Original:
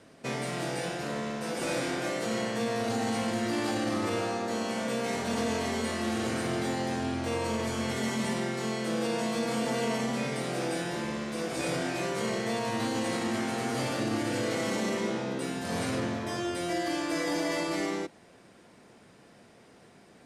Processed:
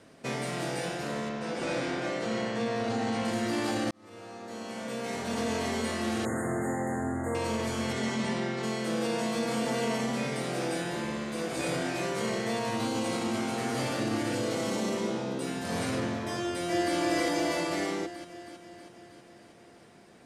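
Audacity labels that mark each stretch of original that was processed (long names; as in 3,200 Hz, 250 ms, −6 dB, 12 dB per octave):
1.290000	3.250000	high-frequency loss of the air 76 metres
3.910000	5.640000	fade in
6.250000	7.350000	linear-phase brick-wall band-stop 2,100–6,400 Hz
7.920000	8.620000	low-pass filter 8,500 Hz → 4,900 Hz
10.770000	11.860000	notch filter 5,500 Hz
12.750000	13.580000	notch filter 1,800 Hz, Q 5.4
14.350000	15.470000	parametric band 1,900 Hz −5.5 dB
16.400000	16.960000	delay throw 320 ms, feedback 65%, level −1.5 dB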